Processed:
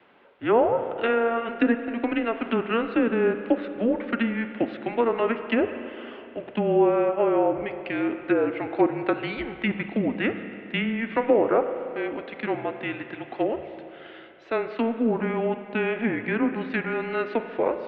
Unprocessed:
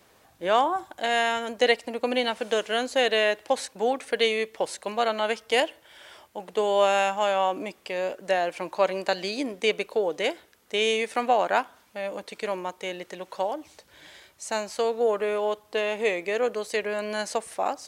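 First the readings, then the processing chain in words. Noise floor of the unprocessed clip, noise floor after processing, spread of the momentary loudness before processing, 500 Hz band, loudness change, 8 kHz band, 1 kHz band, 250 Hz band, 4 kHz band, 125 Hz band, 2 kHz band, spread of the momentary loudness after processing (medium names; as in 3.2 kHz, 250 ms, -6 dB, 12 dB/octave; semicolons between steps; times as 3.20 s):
-60 dBFS, -44 dBFS, 11 LU, +1.0 dB, +1.0 dB, under -40 dB, -3.0 dB, +11.0 dB, -11.0 dB, no reading, -1.5 dB, 11 LU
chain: low-pass that closes with the level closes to 1.1 kHz, closed at -19 dBFS; mistuned SSB -230 Hz 480–3300 Hz; spring tank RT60 2.8 s, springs 34/46 ms, chirp 65 ms, DRR 8.5 dB; trim +3.5 dB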